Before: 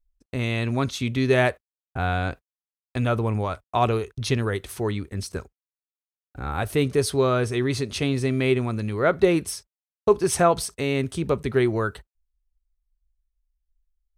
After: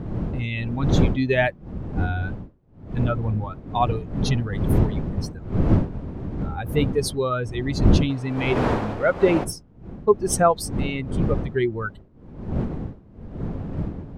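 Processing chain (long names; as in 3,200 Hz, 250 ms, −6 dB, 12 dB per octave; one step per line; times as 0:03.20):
spectral dynamics exaggerated over time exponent 2
wind on the microphone 200 Hz −29 dBFS, from 0:08.09 640 Hz, from 0:09.43 210 Hz
level +3.5 dB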